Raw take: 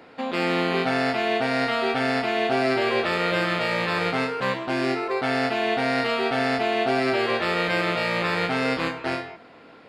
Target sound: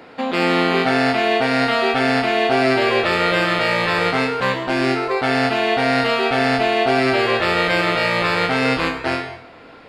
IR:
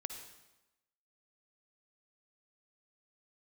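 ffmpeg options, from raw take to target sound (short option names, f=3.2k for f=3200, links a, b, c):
-filter_complex "[0:a]asplit=2[a][b];[b]asubboost=boost=6:cutoff=86[c];[1:a]atrim=start_sample=2205,afade=t=out:st=0.3:d=0.01,atrim=end_sample=13671[d];[c][d]afir=irnorm=-1:irlink=0,volume=3dB[e];[a][e]amix=inputs=2:normalize=0"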